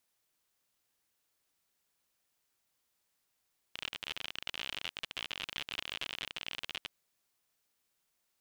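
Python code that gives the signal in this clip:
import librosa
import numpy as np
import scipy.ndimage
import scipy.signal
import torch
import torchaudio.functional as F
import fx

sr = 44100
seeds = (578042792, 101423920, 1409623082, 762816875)

y = fx.geiger_clicks(sr, seeds[0], length_s=3.15, per_s=56.0, level_db=-22.0)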